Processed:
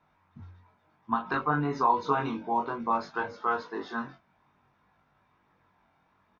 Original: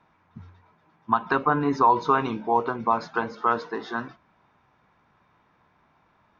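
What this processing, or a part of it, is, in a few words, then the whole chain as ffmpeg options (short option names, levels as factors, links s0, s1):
double-tracked vocal: -filter_complex "[0:a]asplit=2[s0][s1];[s1]adelay=21,volume=0.562[s2];[s0][s2]amix=inputs=2:normalize=0,flanger=delay=19.5:depth=2.9:speed=0.59,volume=0.708"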